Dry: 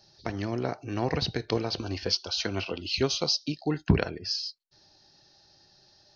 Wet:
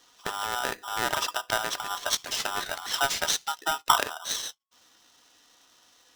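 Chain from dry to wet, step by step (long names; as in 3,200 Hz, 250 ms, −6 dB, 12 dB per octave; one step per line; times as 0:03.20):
ring modulator with a square carrier 1,100 Hz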